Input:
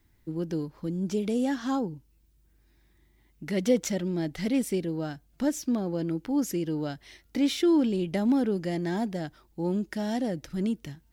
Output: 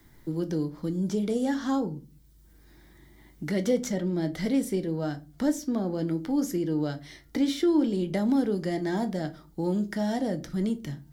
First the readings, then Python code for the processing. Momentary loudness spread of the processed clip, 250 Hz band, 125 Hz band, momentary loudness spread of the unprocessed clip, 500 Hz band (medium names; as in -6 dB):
9 LU, +0.5 dB, +1.5 dB, 11 LU, +0.5 dB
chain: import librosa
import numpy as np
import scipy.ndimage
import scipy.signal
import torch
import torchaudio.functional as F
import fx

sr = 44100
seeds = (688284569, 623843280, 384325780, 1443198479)

y = fx.peak_eq(x, sr, hz=2600.0, db=-11.0, octaves=0.21)
y = fx.room_shoebox(y, sr, seeds[0], volume_m3=120.0, walls='furnished', distance_m=0.54)
y = fx.band_squash(y, sr, depth_pct=40)